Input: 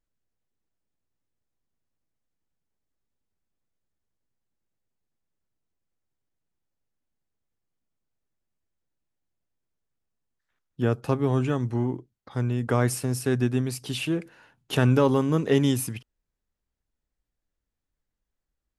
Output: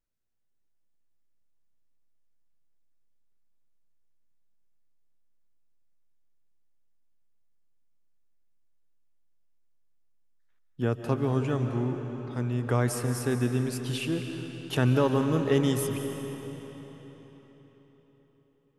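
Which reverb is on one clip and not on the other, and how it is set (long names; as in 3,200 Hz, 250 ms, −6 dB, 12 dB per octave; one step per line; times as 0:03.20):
comb and all-pass reverb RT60 4.4 s, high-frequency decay 0.85×, pre-delay 105 ms, DRR 5.5 dB
level −3.5 dB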